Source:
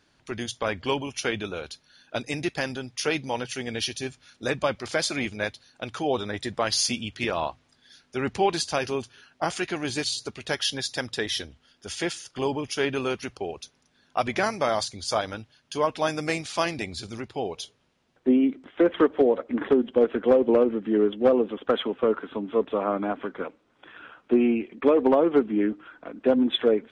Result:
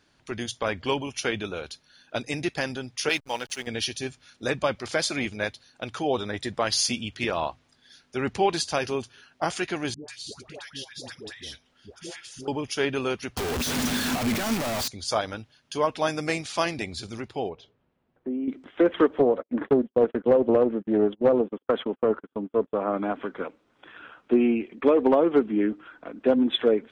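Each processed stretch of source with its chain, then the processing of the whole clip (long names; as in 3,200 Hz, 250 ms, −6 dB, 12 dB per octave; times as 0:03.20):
0:03.09–0:03.67: downward expander −31 dBFS + spectral tilt +3 dB per octave + slack as between gear wheels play −38 dBFS
0:09.94–0:12.48: downward compressor 2 to 1, threshold −44 dBFS + all-pass dispersion highs, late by 145 ms, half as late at 750 Hz
0:13.37–0:14.88: sign of each sample alone + parametric band 240 Hz +11.5 dB 0.25 octaves
0:17.49–0:18.48: downward compressor 3 to 1, threshold −28 dBFS + head-to-tape spacing loss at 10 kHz 41 dB
0:19.19–0:22.94: noise gate −34 dBFS, range −37 dB + high-shelf EQ 2,100 Hz −8.5 dB + highs frequency-modulated by the lows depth 0.2 ms
whole clip: no processing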